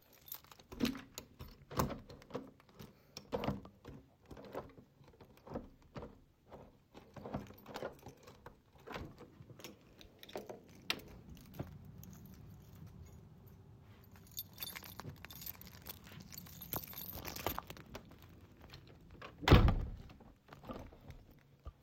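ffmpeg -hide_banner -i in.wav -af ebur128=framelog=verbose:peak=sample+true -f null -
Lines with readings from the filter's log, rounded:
Integrated loudness:
  I:         -41.3 LUFS
  Threshold: -53.9 LUFS
Loudness range:
  LRA:        15.6 LU
  Threshold: -64.4 LUFS
  LRA low:   -52.6 LUFS
  LRA high:  -37.0 LUFS
Sample peak:
  Peak:      -11.0 dBFS
True peak:
  Peak:      -11.0 dBFS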